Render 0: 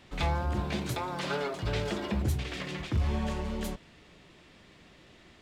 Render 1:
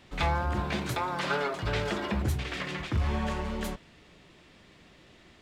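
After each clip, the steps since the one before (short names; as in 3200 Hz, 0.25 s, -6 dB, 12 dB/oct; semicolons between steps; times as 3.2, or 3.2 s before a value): dynamic EQ 1400 Hz, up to +6 dB, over -47 dBFS, Q 0.75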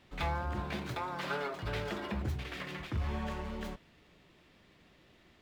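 median filter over 5 samples; gain -6.5 dB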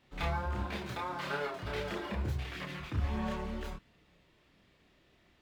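in parallel at -3.5 dB: crossover distortion -52 dBFS; on the sum: chorus voices 2, 0.76 Hz, delay 30 ms, depth 2.3 ms; gain -1 dB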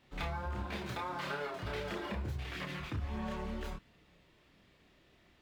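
compressor 4:1, threshold -36 dBFS, peak gain reduction 8 dB; gain +1 dB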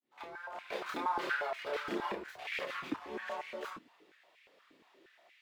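opening faded in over 0.76 s; stepped high-pass 8.5 Hz 280–2200 Hz; gain -1 dB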